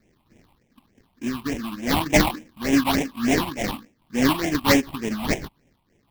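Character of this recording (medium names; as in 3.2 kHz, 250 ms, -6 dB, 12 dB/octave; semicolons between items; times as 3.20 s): aliases and images of a low sample rate 1.4 kHz, jitter 20%; phasing stages 6, 3.4 Hz, lowest notch 440–1200 Hz; random flutter of the level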